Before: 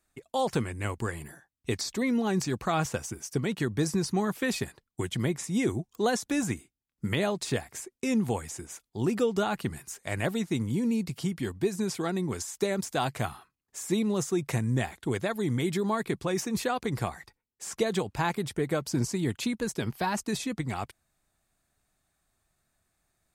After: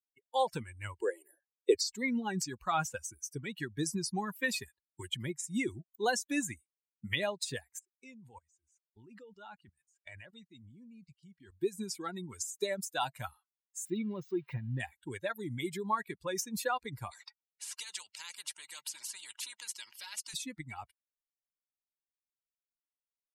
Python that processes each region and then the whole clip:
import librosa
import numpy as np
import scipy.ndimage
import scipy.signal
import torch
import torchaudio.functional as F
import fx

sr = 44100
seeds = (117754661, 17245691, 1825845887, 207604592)

y = fx.chain(x, sr, fx.highpass(hz=350.0, slope=24),
    fx.low_shelf_res(hz=790.0, db=10.0, q=1.5), at=(1.01, 1.75))
y = fx.chain(y, sr, fx.lowpass(hz=7800.0, slope=12),
    fx.level_steps(step_db=18), at=(7.79, 11.52))
y = fx.chain(y, sr, fx.crossing_spikes(level_db=-22.0),
    fx.air_absorb(metres=310.0), at=(13.85, 14.8))
y = fx.chain(y, sr, fx.bandpass_edges(low_hz=380.0, high_hz=6100.0),
    fx.spectral_comp(ratio=4.0), at=(17.11, 20.34))
y = fx.bin_expand(y, sr, power=2.0)
y = fx.low_shelf(y, sr, hz=340.0, db=-11.0)
y = fx.notch(y, sr, hz=670.0, q=12.0)
y = y * 10.0 ** (3.5 / 20.0)